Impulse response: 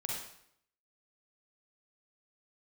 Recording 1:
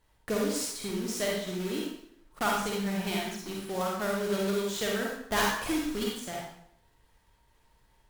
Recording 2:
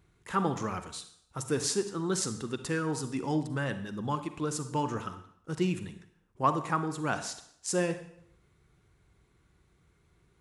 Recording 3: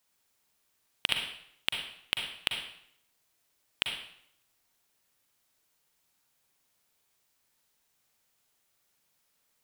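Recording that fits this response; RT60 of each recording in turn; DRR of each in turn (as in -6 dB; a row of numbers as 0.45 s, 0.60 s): 1; 0.70 s, 0.70 s, 0.70 s; -3.0 dB, 9.5 dB, 2.5 dB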